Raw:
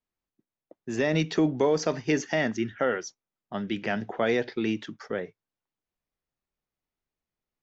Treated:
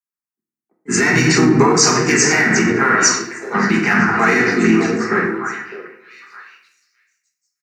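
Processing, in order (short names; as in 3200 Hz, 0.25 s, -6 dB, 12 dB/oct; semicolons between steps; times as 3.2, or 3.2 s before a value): in parallel at -10 dB: overloaded stage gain 20.5 dB; on the sum: HPF 350 Hz 6 dB/oct; harmoniser -4 st -8 dB, +3 st -7 dB; high shelf 3200 Hz +8.5 dB; fixed phaser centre 1400 Hz, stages 4; on a send: delay with a stepping band-pass 0.607 s, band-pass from 480 Hz, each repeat 1.4 oct, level -5.5 dB; on the sum: shoebox room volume 430 m³, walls mixed, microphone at 1.3 m; maximiser +20 dB; three-band expander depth 70%; gain -4 dB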